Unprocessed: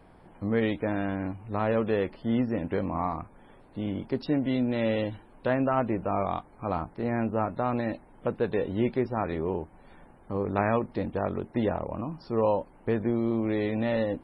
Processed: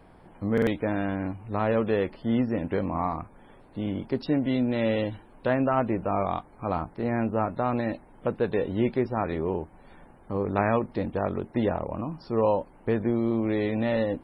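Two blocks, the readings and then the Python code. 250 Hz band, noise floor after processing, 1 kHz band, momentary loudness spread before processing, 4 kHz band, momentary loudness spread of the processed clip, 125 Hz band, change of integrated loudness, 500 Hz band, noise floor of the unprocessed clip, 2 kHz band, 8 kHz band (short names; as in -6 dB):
+1.5 dB, -53 dBFS, +1.5 dB, 8 LU, +1.5 dB, 8 LU, +1.5 dB, +1.5 dB, +1.5 dB, -55 dBFS, +1.5 dB, n/a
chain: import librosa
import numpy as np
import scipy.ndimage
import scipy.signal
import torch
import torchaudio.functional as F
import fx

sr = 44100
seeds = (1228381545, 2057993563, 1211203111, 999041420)

y = fx.buffer_glitch(x, sr, at_s=(0.53,), block=2048, repeats=2)
y = y * 10.0 ** (1.5 / 20.0)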